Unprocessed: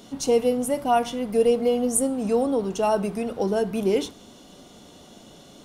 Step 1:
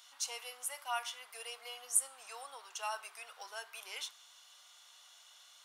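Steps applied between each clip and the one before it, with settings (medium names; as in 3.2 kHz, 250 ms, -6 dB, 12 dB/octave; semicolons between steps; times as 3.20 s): high-pass 1.1 kHz 24 dB/octave; trim -6 dB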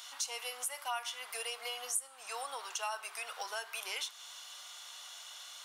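compression 3:1, threshold -48 dBFS, peak gain reduction 17.5 dB; trim +10.5 dB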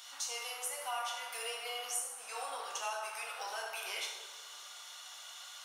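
plate-style reverb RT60 1.6 s, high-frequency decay 0.55×, DRR -2 dB; trim -3.5 dB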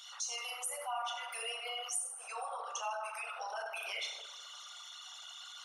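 resonances exaggerated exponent 2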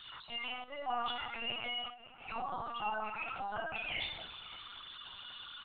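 delay 565 ms -19 dB; LPC vocoder at 8 kHz pitch kept; trim +2 dB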